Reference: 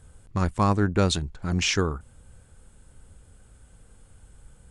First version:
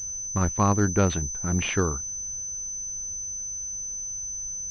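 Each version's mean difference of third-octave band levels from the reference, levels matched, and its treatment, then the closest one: 4.0 dB: class-D stage that switches slowly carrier 6.1 kHz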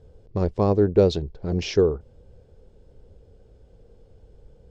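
5.5 dB: FFT filter 270 Hz 0 dB, 440 Hz +12 dB, 1.3 kHz -12 dB, 5.2 kHz -4 dB, 9.2 kHz -29 dB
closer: first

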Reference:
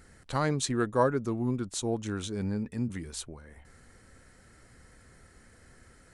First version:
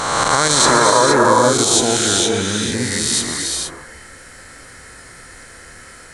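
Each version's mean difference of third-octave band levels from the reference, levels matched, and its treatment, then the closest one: 10.0 dB: reverse spectral sustain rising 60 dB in 1.82 s; bass shelf 480 Hz -12 dB; gated-style reverb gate 490 ms rising, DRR 2 dB; loudness maximiser +17.5 dB; trim -1 dB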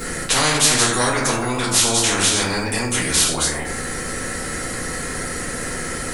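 17.0 dB: chunks repeated in reverse 144 ms, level -12.5 dB; treble shelf 7.9 kHz +9.5 dB; simulated room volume 33 m³, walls mixed, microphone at 1.6 m; spectrum-flattening compressor 4:1; trim +1 dB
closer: first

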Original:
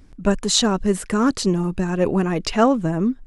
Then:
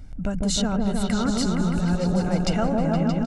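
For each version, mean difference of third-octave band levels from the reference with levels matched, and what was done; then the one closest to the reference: 8.0 dB: bass shelf 270 Hz +5.5 dB; comb 1.4 ms, depth 53%; compression 5:1, threshold -24 dBFS, peak gain reduction 13.5 dB; on a send: delay with an opening low-pass 156 ms, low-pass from 750 Hz, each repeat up 1 oct, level 0 dB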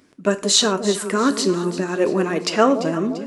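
6.0 dB: high-pass 280 Hz 12 dB/octave; peaking EQ 810 Hz -8.5 dB 0.25 oct; echo whose repeats swap between lows and highs 171 ms, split 830 Hz, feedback 67%, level -10 dB; gated-style reverb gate 140 ms falling, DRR 9.5 dB; trim +2.5 dB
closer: second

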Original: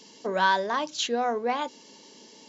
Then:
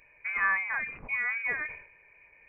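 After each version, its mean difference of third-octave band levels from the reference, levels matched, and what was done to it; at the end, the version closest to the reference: 12.5 dB: peaking EQ 63 Hz -7.5 dB 0.87 oct; frequency inversion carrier 2.7 kHz; decay stretcher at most 98 dB/s; trim -4.5 dB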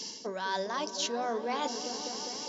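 8.5 dB: peaking EQ 5.4 kHz +12 dB 0.62 oct; reverse; compression 12:1, threshold -35 dBFS, peak gain reduction 18.5 dB; reverse; delay with an opening low-pass 203 ms, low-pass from 400 Hz, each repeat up 1 oct, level -6 dB; trim +5 dB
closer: second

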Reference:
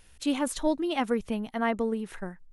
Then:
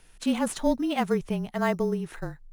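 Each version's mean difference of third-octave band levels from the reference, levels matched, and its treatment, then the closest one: 5.0 dB: in parallel at -11.5 dB: sample-rate reducer 5.7 kHz, jitter 0%; on the sum: frequency shift -29 Hz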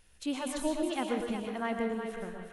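7.0 dB: on a send: thinning echo 366 ms, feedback 35%, high-pass 390 Hz, level -7.5 dB; on the sum: plate-style reverb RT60 0.53 s, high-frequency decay 1×, pre-delay 100 ms, DRR 2.5 dB; trim -6.5 dB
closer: first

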